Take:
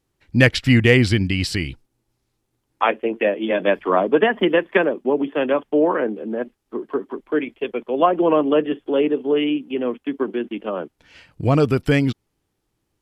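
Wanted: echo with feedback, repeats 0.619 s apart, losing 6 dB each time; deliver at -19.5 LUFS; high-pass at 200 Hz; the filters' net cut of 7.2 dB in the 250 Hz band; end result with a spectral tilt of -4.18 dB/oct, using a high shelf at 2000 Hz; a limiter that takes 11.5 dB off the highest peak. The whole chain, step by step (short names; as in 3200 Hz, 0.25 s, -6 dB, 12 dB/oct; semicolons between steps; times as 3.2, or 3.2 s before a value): HPF 200 Hz; bell 250 Hz -8 dB; high shelf 2000 Hz +5 dB; limiter -9.5 dBFS; feedback echo 0.619 s, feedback 50%, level -6 dB; gain +3.5 dB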